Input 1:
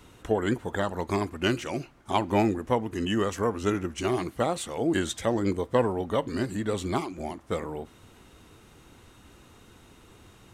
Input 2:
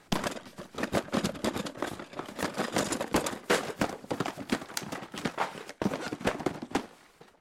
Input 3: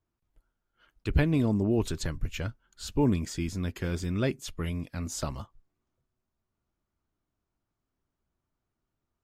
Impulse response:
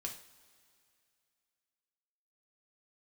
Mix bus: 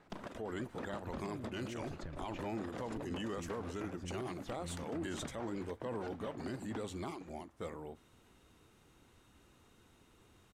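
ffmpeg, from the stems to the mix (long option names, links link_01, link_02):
-filter_complex "[0:a]bandreject=frequency=50:width_type=h:width=6,bandreject=frequency=100:width_type=h:width=6,adelay=100,volume=-11.5dB[link_01];[1:a]volume=-4dB[link_02];[2:a]acompressor=threshold=-28dB:ratio=6,volume=-7dB[link_03];[link_02][link_03]amix=inputs=2:normalize=0,lowpass=frequency=1500:poles=1,acompressor=threshold=-40dB:ratio=10,volume=0dB[link_04];[link_01][link_04]amix=inputs=2:normalize=0,alimiter=level_in=8dB:limit=-24dB:level=0:latency=1:release=16,volume=-8dB"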